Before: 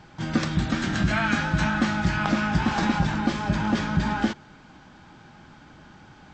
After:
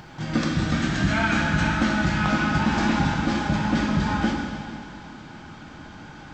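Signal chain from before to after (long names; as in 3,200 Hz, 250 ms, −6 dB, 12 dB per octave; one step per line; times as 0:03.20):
in parallel at −2 dB: upward compression, threshold −29 dBFS
on the sum: dense smooth reverb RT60 2.3 s, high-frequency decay 0.95×, DRR −0.5 dB
level −6.5 dB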